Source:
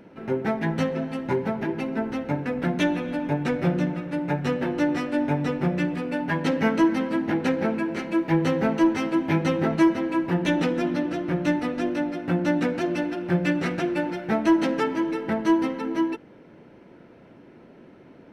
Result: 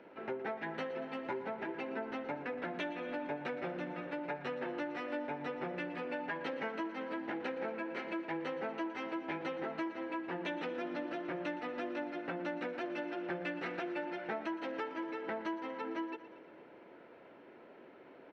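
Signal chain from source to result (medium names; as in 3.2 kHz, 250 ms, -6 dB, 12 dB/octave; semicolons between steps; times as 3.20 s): three-band isolator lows -18 dB, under 340 Hz, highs -22 dB, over 4.1 kHz; compression, threshold -34 dBFS, peak gain reduction 15 dB; on a send: feedback delay 117 ms, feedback 60%, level -15 dB; on the sum: trim -2.5 dB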